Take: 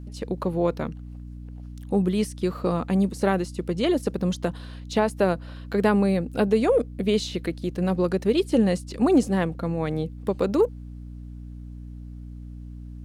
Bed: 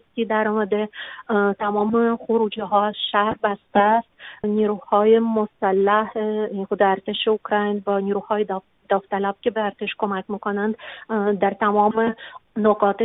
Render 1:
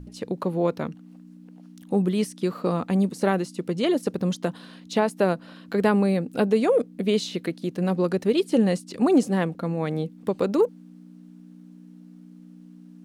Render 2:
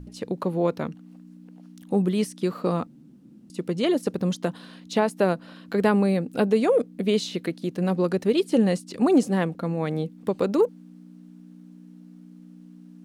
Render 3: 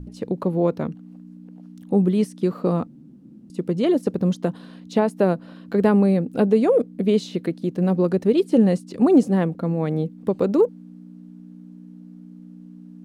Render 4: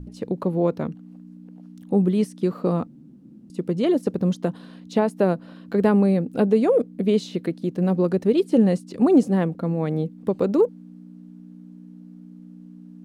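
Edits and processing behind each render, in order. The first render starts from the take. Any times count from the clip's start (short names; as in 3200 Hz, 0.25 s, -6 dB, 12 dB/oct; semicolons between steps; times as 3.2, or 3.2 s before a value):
notches 60/120 Hz
2.87–3.5 room tone
tilt shelf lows +5 dB, about 920 Hz
gain -1 dB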